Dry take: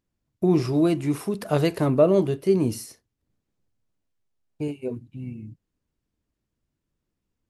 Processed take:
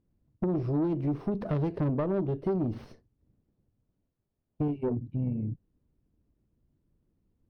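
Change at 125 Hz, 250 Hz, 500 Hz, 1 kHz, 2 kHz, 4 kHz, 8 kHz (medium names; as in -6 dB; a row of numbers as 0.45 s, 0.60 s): -3.5 dB, -6.0 dB, -10.0 dB, -7.0 dB, -12.5 dB, under -20 dB, under -30 dB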